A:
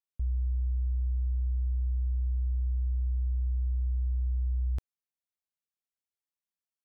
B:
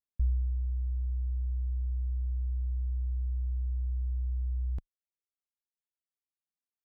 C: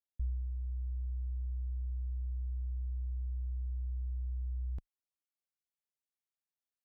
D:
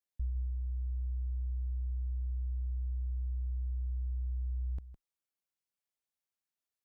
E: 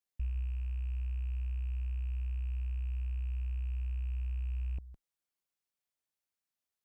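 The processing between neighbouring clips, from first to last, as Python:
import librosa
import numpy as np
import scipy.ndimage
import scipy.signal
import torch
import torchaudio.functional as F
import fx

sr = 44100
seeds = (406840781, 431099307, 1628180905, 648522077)

y1 = fx.dereverb_blind(x, sr, rt60_s=1.5)
y1 = fx.tilt_eq(y1, sr, slope=-2.5)
y1 = y1 * 10.0 ** (-6.5 / 20.0)
y2 = fx.rider(y1, sr, range_db=10, speed_s=0.5)
y2 = y2 * 10.0 ** (-5.5 / 20.0)
y3 = y2 + 10.0 ** (-12.5 / 20.0) * np.pad(y2, (int(159 * sr / 1000.0), 0))[:len(y2)]
y4 = fx.rattle_buzz(y3, sr, strikes_db=-39.0, level_db=-44.0)
y4 = fx.slew_limit(y4, sr, full_power_hz=4.7)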